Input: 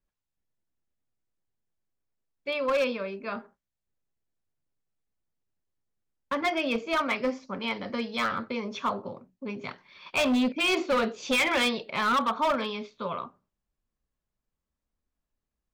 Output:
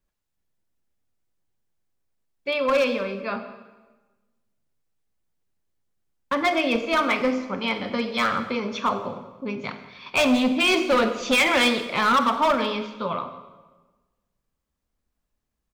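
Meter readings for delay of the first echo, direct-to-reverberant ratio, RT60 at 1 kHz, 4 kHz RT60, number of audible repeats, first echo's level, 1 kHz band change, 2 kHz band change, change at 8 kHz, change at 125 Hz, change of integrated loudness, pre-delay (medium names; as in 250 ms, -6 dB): 171 ms, 9.0 dB, 1.2 s, 1.0 s, 1, -21.0 dB, +5.5 dB, +5.5 dB, +5.5 dB, +5.5 dB, +5.5 dB, 30 ms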